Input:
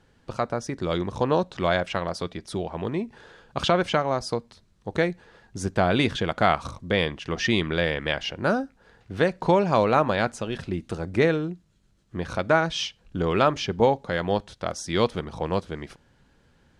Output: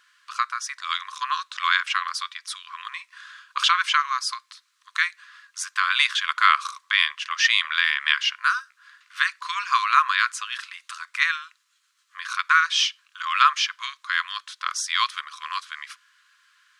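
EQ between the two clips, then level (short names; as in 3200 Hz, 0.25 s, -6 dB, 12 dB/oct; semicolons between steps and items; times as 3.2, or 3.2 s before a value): brick-wall FIR high-pass 1000 Hz; +8.0 dB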